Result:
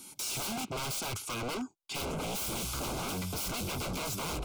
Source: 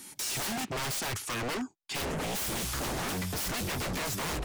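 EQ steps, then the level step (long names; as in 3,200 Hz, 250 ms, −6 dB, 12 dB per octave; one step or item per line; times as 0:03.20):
Butterworth band-reject 1,800 Hz, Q 3.2
−2.0 dB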